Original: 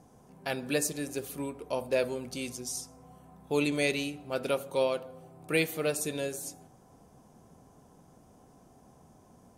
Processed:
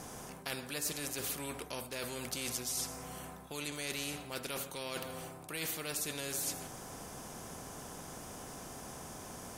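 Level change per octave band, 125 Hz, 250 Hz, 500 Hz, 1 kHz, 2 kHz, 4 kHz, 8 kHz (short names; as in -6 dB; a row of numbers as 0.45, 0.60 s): -5.5, -9.5, -12.5, -4.0, -6.5, -1.0, +0.5 dB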